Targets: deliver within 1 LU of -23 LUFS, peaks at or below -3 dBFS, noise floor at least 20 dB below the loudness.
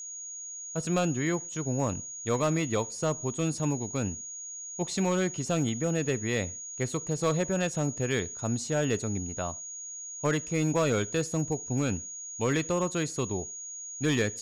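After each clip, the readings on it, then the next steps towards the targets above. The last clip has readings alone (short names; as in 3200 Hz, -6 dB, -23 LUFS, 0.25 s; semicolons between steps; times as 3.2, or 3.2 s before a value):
clipped 0.6%; flat tops at -19.0 dBFS; steady tone 6700 Hz; tone level -38 dBFS; loudness -30.0 LUFS; peak -19.0 dBFS; loudness target -23.0 LUFS
-> clip repair -19 dBFS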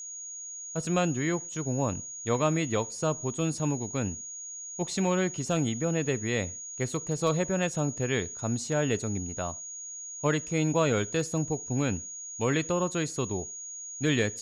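clipped 0.0%; steady tone 6700 Hz; tone level -38 dBFS
-> notch 6700 Hz, Q 30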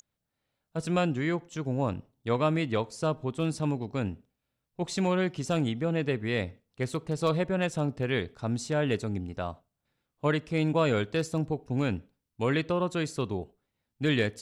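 steady tone none; loudness -30.0 LUFS; peak -12.5 dBFS; loudness target -23.0 LUFS
-> gain +7 dB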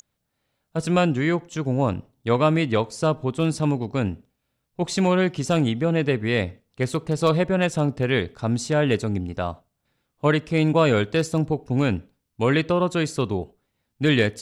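loudness -23.0 LUFS; peak -5.5 dBFS; noise floor -77 dBFS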